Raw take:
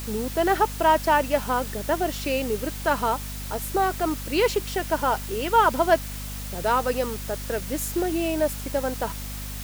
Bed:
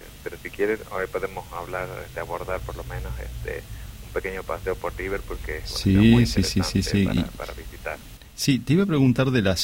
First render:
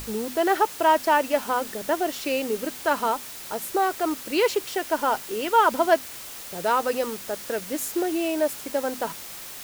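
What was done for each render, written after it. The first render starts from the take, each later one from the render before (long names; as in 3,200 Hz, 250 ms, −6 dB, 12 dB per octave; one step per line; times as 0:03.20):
mains-hum notches 50/100/150/200/250 Hz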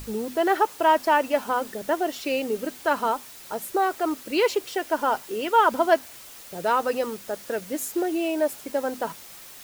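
broadband denoise 6 dB, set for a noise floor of −39 dBFS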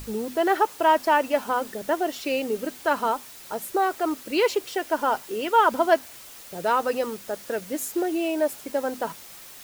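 no processing that can be heard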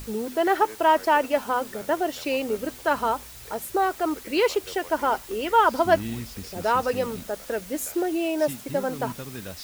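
mix in bed −17 dB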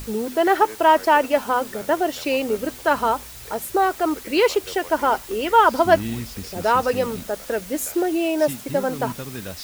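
level +4 dB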